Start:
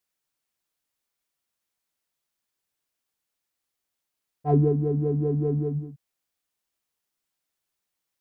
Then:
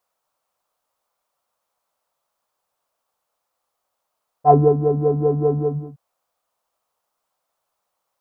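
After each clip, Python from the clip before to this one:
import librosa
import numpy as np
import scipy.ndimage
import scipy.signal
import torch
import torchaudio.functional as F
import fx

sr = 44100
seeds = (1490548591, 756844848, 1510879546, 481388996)

y = fx.band_shelf(x, sr, hz=800.0, db=14.0, octaves=1.7)
y = F.gain(torch.from_numpy(y), 2.5).numpy()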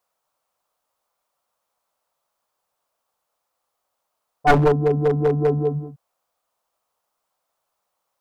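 y = np.minimum(x, 2.0 * 10.0 ** (-12.5 / 20.0) - x)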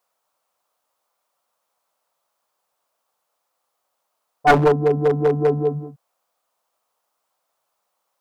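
y = fx.low_shelf(x, sr, hz=120.0, db=-11.0)
y = F.gain(torch.from_numpy(y), 2.5).numpy()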